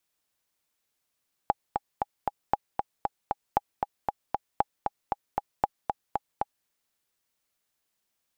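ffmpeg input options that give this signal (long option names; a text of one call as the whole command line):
ffmpeg -f lavfi -i "aevalsrc='pow(10,(-8.5-4.5*gte(mod(t,4*60/232),60/232))/20)*sin(2*PI*819*mod(t,60/232))*exp(-6.91*mod(t,60/232)/0.03)':duration=5.17:sample_rate=44100" out.wav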